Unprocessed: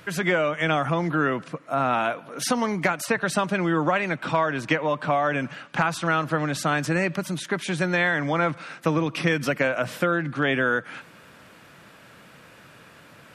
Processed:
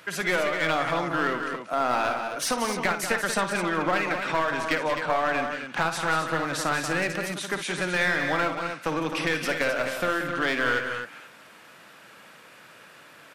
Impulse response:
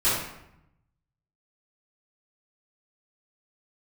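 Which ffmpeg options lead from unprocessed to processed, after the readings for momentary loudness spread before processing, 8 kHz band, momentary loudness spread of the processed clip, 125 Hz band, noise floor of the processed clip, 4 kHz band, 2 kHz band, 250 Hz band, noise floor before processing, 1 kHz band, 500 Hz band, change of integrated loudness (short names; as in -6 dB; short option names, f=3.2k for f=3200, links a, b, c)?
6 LU, +1.5 dB, 5 LU, -8.5 dB, -50 dBFS, +1.5 dB, -0.5 dB, -5.0 dB, -50 dBFS, -1.0 dB, -2.5 dB, -1.5 dB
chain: -af "highpass=f=480:p=1,aeval=exprs='clip(val(0),-1,0.0631)':c=same,aecho=1:1:55.39|183.7|259.5:0.316|0.355|0.398"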